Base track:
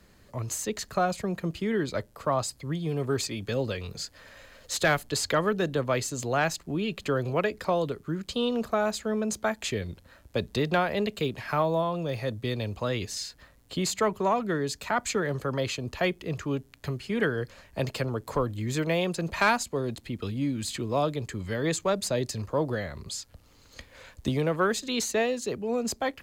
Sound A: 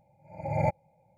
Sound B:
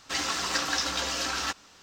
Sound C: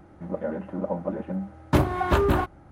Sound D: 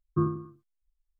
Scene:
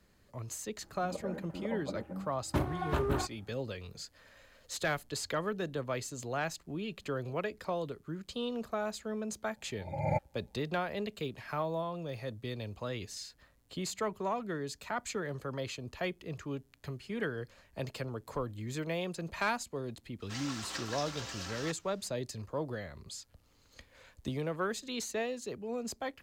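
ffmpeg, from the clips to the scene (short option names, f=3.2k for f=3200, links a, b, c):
-filter_complex "[0:a]volume=-9dB[a];[3:a]atrim=end=2.71,asetpts=PTS-STARTPTS,volume=-11dB,afade=t=in:d=0.004:c=hsin,afade=t=out:st=2.706:d=0.004:c=hsin,adelay=810[b];[1:a]atrim=end=1.17,asetpts=PTS-STARTPTS,volume=-4.5dB,afade=t=in:d=0.004:c=hsin,afade=t=out:st=1.166:d=0.004:c=hsin,adelay=9480[c];[2:a]atrim=end=1.82,asetpts=PTS-STARTPTS,volume=-13dB,afade=t=in:d=0.004:c=hsin,afade=t=out:st=1.816:d=0.004:c=hsin,adelay=890820S[d];[a][b][c][d]amix=inputs=4:normalize=0"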